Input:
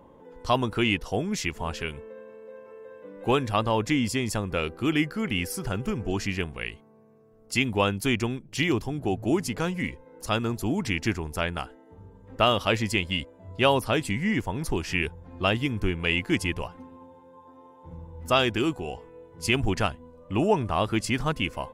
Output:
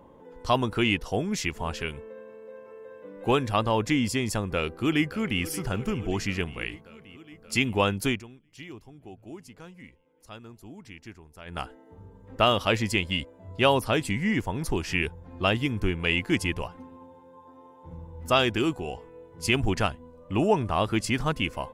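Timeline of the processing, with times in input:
4.41–5.42 s: echo throw 580 ms, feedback 75%, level -17 dB
8.07–11.61 s: dip -18 dB, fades 0.16 s

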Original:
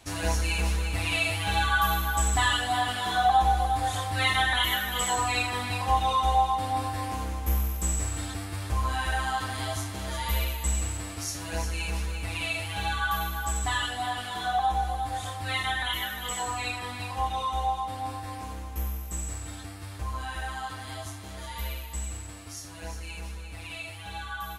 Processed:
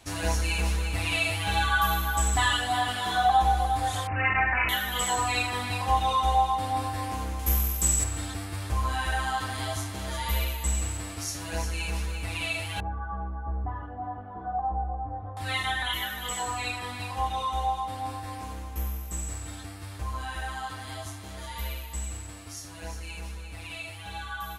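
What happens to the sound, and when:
4.07–4.69 s: careless resampling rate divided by 8×, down none, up filtered
7.39–8.04 s: treble shelf 3 kHz +8.5 dB
12.80–15.37 s: Bessel low-pass 690 Hz, order 4

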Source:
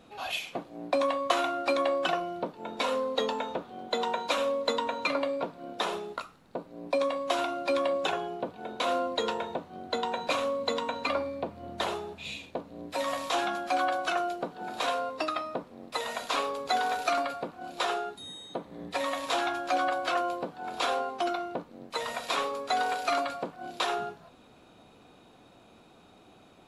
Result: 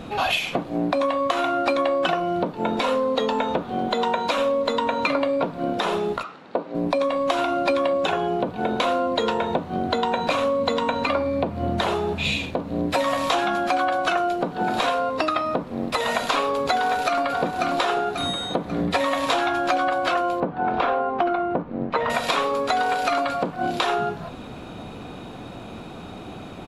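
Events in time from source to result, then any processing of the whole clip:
6.23–6.75 s: band-pass 340–4500 Hz
16.78–17.76 s: echo throw 540 ms, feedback 40%, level -11 dB
20.40–22.10 s: low-pass 1.9 kHz
whole clip: tone controls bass +6 dB, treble -5 dB; compression 6:1, threshold -37 dBFS; loudness maximiser +25.5 dB; trim -8 dB

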